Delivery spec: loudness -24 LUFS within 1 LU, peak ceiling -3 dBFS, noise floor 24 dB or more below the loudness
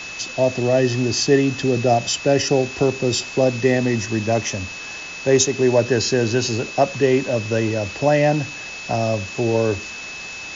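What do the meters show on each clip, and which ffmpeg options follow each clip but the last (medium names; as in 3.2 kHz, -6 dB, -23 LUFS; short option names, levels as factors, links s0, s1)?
steady tone 2.6 kHz; tone level -32 dBFS; noise floor -33 dBFS; noise floor target -44 dBFS; loudness -19.5 LUFS; peak level -3.5 dBFS; loudness target -24.0 LUFS
-> -af "bandreject=f=2600:w=30"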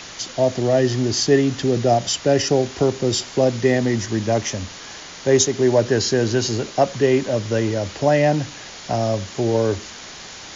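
steady tone not found; noise floor -38 dBFS; noise floor target -44 dBFS
-> -af "afftdn=nr=6:nf=-38"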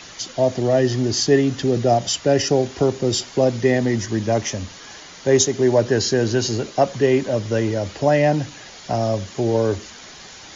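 noise floor -41 dBFS; noise floor target -44 dBFS
-> -af "afftdn=nr=6:nf=-41"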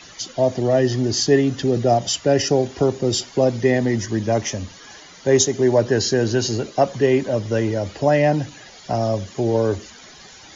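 noise floor -44 dBFS; loudness -20.0 LUFS; peak level -3.5 dBFS; loudness target -24.0 LUFS
-> -af "volume=0.631"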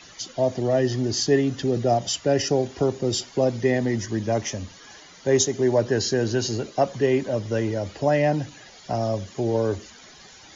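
loudness -24.0 LUFS; peak level -7.5 dBFS; noise floor -48 dBFS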